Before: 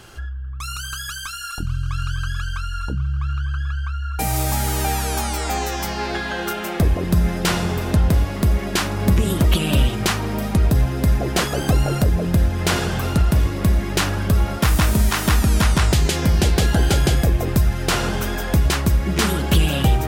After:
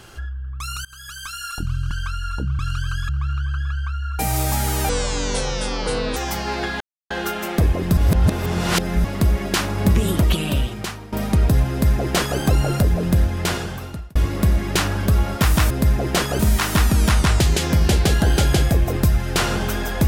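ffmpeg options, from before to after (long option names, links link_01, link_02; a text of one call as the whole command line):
ffmpeg -i in.wav -filter_complex "[0:a]asplit=14[link_01][link_02][link_03][link_04][link_05][link_06][link_07][link_08][link_09][link_10][link_11][link_12][link_13][link_14];[link_01]atrim=end=0.85,asetpts=PTS-STARTPTS,afade=type=out:start_time=0.846:duration=0.004:curve=hsin:silence=0.0707946[link_15];[link_02]atrim=start=0.85:end=1.912,asetpts=PTS-STARTPTS,afade=type=in:duration=0.54:silence=0.0707946[link_16];[link_03]atrim=start=2.408:end=3.092[link_17];[link_04]atrim=start=1.908:end=2.412[link_18];[link_05]atrim=start=3.088:end=4.894[link_19];[link_06]atrim=start=4.89:end=5.68,asetpts=PTS-STARTPTS,asetrate=27342,aresample=44100[link_20];[link_07]atrim=start=5.676:end=6.32,asetpts=PTS-STARTPTS,afade=type=out:start_time=0.64:duration=0.004:curve=hsin,apad=pad_dur=0.3[link_21];[link_08]atrim=start=6.32:end=7.192,asetpts=PTS-STARTPTS,afade=type=in:duration=0.004:curve=hsin[link_22];[link_09]atrim=start=7.188:end=8.262,asetpts=PTS-STARTPTS,areverse[link_23];[link_10]atrim=start=8.258:end=10.34,asetpts=PTS-STARTPTS,afade=type=out:start_time=1.082:duration=1:silence=0.149624[link_24];[link_11]atrim=start=10.34:end=13.37,asetpts=PTS-STARTPTS,afade=type=in:duration=0.004:curve=hsin:silence=0.149624,afade=type=out:start_time=2.09:duration=0.94[link_25];[link_12]atrim=start=13.37:end=14.922,asetpts=PTS-STARTPTS,afade=type=in:duration=0.004:curve=hsin[link_26];[link_13]atrim=start=10.918:end=11.612[link_27];[link_14]atrim=start=14.918[link_28];[link_15][link_16]concat=n=2:v=0:a=1[link_29];[link_29][link_17]acrossfade=duration=0.004:curve1=hsin:curve2=hsin[link_30];[link_30][link_18]acrossfade=duration=0.004:curve1=hsin:curve2=hsin[link_31];[link_31][link_19]acrossfade=duration=0.004:curve1=hsin:curve2=hsin[link_32];[link_32][link_20]acrossfade=duration=0.004:curve1=hsin:curve2=hsin[link_33];[link_21][link_22]concat=n=2:v=0:a=1[link_34];[link_33][link_34]acrossfade=duration=0.004:curve1=hsin:curve2=hsin[link_35];[link_35][link_23]acrossfade=duration=0.004:curve1=hsin:curve2=hsin[link_36];[link_24][link_25][link_26]concat=n=3:v=0:a=1[link_37];[link_36][link_37]acrossfade=duration=0.004:curve1=hsin:curve2=hsin[link_38];[link_38][link_27]acrossfade=duration=0.004:curve1=hsin:curve2=hsin[link_39];[link_39][link_28]acrossfade=duration=0.004:curve1=hsin:curve2=hsin" out.wav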